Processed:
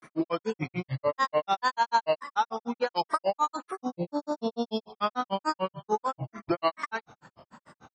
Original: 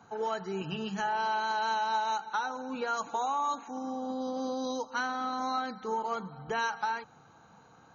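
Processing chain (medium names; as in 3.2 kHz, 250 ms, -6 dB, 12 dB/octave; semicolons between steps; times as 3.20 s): granulator, grains 6.8 per s, spray 23 ms, pitch spread up and down by 7 st; trim +8.5 dB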